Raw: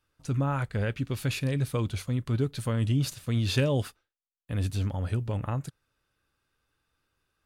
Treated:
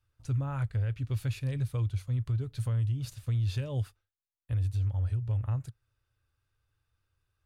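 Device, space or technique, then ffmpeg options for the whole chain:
car stereo with a boomy subwoofer: -af "lowshelf=f=140:t=q:w=3:g=8.5,alimiter=limit=0.15:level=0:latency=1:release=351,volume=0.447"

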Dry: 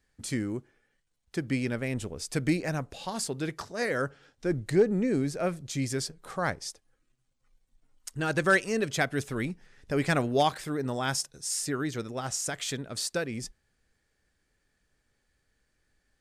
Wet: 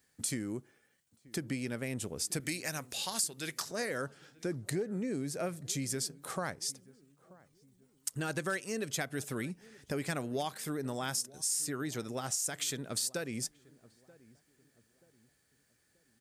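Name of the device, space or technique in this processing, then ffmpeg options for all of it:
ASMR close-microphone chain: -filter_complex "[0:a]highpass=130,highshelf=f=6600:g=9.5,asettb=1/sr,asplit=3[s0][s1][s2];[s0]atrim=end=2.404[s3];[s1]atrim=start=2.4:end=3.71,asetpts=PTS-STARTPTS,afade=t=in:d=0.004:c=qsin,afade=t=out:st=1.306:d=0.004:c=qsin,tiltshelf=f=1200:g=-7[s4];[s2]atrim=start=3.706[s5];[s3][s4]acrossfade=d=0.004:c1=hsin:c2=qsin[s6];[s6][s5]acrossfade=d=0.004:c1=qsin:c2=hsin,lowshelf=f=140:g=5,acompressor=threshold=0.02:ratio=4,highshelf=f=9900:g=6,asplit=2[s7][s8];[s8]adelay=932,lowpass=f=920:p=1,volume=0.0891,asplit=2[s9][s10];[s10]adelay=932,lowpass=f=920:p=1,volume=0.44,asplit=2[s11][s12];[s12]adelay=932,lowpass=f=920:p=1,volume=0.44[s13];[s7][s9][s11][s13]amix=inputs=4:normalize=0"

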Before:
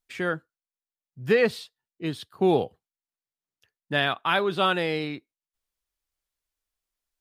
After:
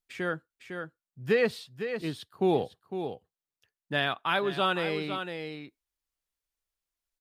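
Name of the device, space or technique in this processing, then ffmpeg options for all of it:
ducked delay: -filter_complex "[0:a]asplit=3[s0][s1][s2];[s1]adelay=505,volume=0.501[s3];[s2]apad=whole_len=339840[s4];[s3][s4]sidechaincompress=threshold=0.0794:ratio=8:attack=7.7:release=1150[s5];[s0][s5]amix=inputs=2:normalize=0,volume=0.631"

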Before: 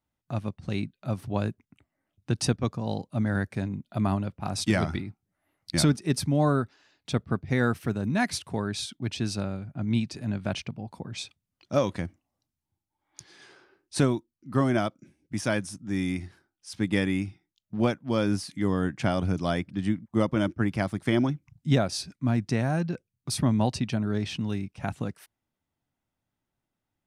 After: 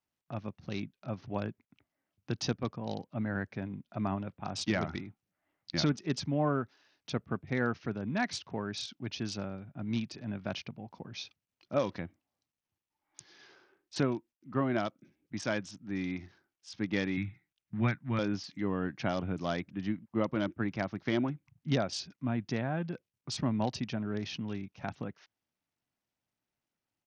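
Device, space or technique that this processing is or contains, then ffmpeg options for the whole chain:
Bluetooth headset: -filter_complex "[0:a]asettb=1/sr,asplit=3[s0][s1][s2];[s0]atrim=end=17.174[s3];[s1]atrim=start=17.17:end=18.19,asetpts=PTS-STARTPTS,afade=t=in:d=0.004:c=qsin,afade=t=out:st=1.016:d=0.004:c=qsin,equalizer=f=125:t=o:w=1:g=11,equalizer=f=500:t=o:w=1:g=-11,equalizer=f=2000:t=o:w=1:g=12,equalizer=f=4000:t=o:w=1:g=-11,equalizer=f=8000:t=o:w=1:g=-7[s4];[s2]atrim=start=18.186[s5];[s3][s4]acrossfade=d=0.004:c1=hsin:c2=qsin[s6];[s6][s5]acrossfade=d=0.004:c1=qsin:c2=hsin,highpass=f=160:p=1,aresample=16000,aresample=44100,volume=0.562" -ar 48000 -c:a sbc -b:a 64k

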